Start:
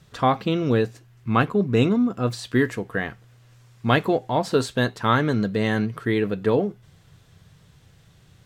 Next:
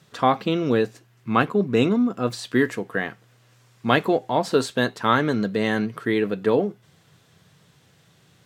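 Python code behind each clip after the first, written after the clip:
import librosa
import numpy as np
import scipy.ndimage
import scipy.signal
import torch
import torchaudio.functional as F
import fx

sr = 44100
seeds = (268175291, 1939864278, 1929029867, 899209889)

y = scipy.signal.sosfilt(scipy.signal.butter(2, 170.0, 'highpass', fs=sr, output='sos'), x)
y = y * librosa.db_to_amplitude(1.0)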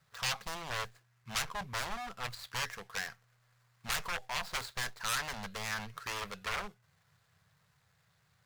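y = scipy.signal.medfilt(x, 15)
y = 10.0 ** (-21.0 / 20.0) * (np.abs((y / 10.0 ** (-21.0 / 20.0) + 3.0) % 4.0 - 2.0) - 1.0)
y = fx.tone_stack(y, sr, knobs='10-0-10')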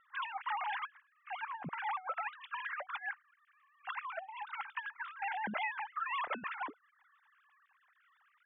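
y = fx.sine_speech(x, sr)
y = scipy.signal.sosfilt(scipy.signal.butter(2, 2400.0, 'lowpass', fs=sr, output='sos'), y)
y = fx.over_compress(y, sr, threshold_db=-41.0, ratio=-0.5)
y = y * librosa.db_to_amplitude(3.0)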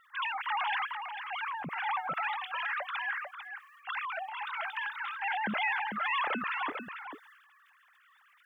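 y = fx.high_shelf(x, sr, hz=2600.0, db=9.5)
y = y + 10.0 ** (-8.5 / 20.0) * np.pad(y, (int(446 * sr / 1000.0), 0))[:len(y)]
y = fx.transient(y, sr, attack_db=-4, sustain_db=7)
y = y * librosa.db_to_amplitude(3.5)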